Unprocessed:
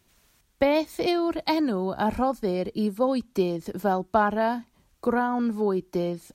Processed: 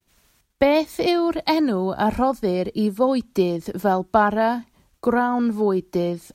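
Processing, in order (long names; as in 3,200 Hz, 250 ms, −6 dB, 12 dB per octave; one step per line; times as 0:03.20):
downward expander −59 dBFS
level +4.5 dB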